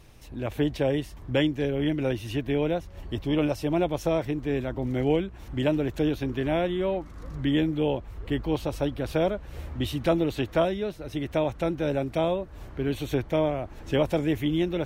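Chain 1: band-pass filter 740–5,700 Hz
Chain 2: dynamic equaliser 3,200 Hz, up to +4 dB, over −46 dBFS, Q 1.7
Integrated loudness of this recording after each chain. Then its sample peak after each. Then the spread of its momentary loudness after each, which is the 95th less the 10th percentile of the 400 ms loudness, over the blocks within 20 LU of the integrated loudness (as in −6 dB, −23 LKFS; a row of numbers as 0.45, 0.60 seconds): −35.5, −27.5 LKFS; −14.5, −11.5 dBFS; 9, 7 LU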